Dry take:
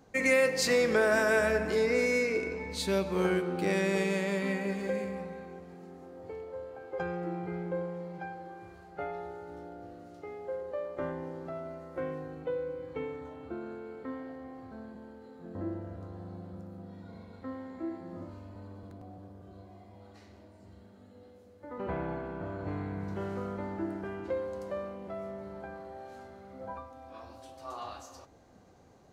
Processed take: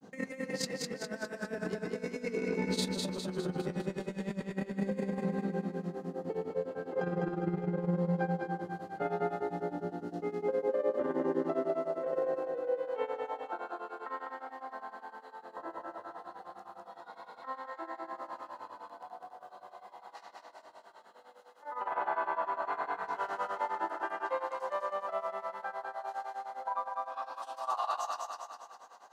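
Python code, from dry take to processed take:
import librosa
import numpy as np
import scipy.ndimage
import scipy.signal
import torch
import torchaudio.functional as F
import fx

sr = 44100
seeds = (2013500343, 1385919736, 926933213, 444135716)

p1 = fx.filter_sweep_highpass(x, sr, from_hz=190.0, to_hz=920.0, start_s=10.09, end_s=13.65, q=2.6)
p2 = fx.granulator(p1, sr, seeds[0], grain_ms=127.0, per_s=9.8, spray_ms=16.0, spread_st=0)
p3 = fx.over_compress(p2, sr, threshold_db=-36.0, ratio=-0.5)
p4 = fx.notch(p3, sr, hz=2300.0, q=7.6)
p5 = p4 + fx.echo_feedback(p4, sr, ms=203, feedback_pct=51, wet_db=-3.0, dry=0)
y = p5 * 10.0 ** (1.5 / 20.0)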